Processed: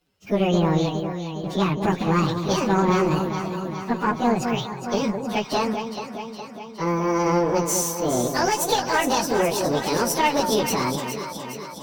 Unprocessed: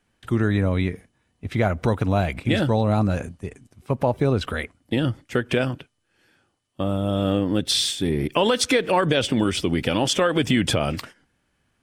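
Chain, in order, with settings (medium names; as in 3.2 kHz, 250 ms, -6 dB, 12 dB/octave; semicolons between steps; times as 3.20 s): frequency-domain pitch shifter +9.5 st; echo whose repeats swap between lows and highs 207 ms, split 1 kHz, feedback 78%, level -6 dB; valve stage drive 13 dB, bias 0.6; trim +4.5 dB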